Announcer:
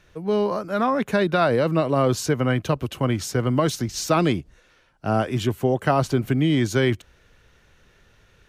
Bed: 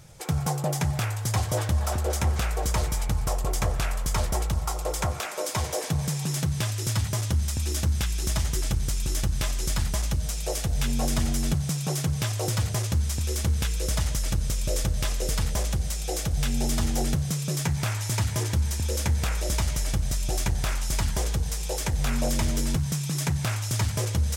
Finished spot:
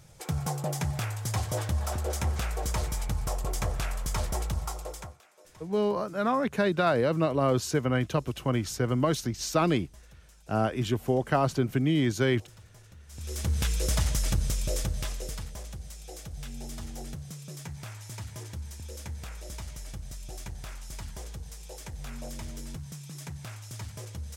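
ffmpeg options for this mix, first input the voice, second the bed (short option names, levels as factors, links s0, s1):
-filter_complex "[0:a]adelay=5450,volume=0.562[s0];[1:a]volume=12.6,afade=t=out:st=4.6:d=0.58:silence=0.0749894,afade=t=in:st=13.07:d=0.62:silence=0.0473151,afade=t=out:st=14.3:d=1.2:silence=0.211349[s1];[s0][s1]amix=inputs=2:normalize=0"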